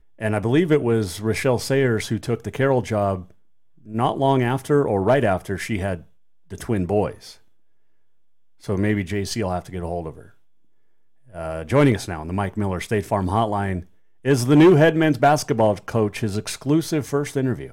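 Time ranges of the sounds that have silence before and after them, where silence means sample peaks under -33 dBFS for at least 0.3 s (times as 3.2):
3.88–6.01
6.52–7.32
8.65–10.21
11.35–13.82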